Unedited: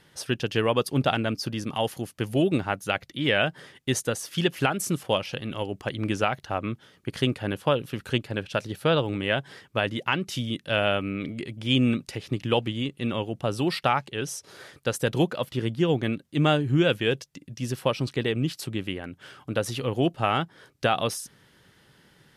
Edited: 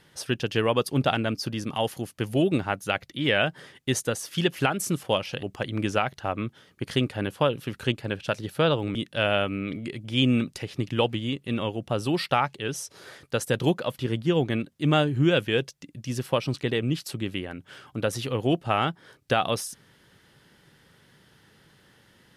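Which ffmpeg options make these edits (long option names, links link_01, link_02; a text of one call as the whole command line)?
ffmpeg -i in.wav -filter_complex "[0:a]asplit=3[link_01][link_02][link_03];[link_01]atrim=end=5.432[link_04];[link_02]atrim=start=5.688:end=9.212[link_05];[link_03]atrim=start=10.478[link_06];[link_04][link_05]acrossfade=duration=0.004:curve1=hsin:curve2=hsin[link_07];[link_07][link_06]acrossfade=duration=0.004:curve1=hsin:curve2=hsin" out.wav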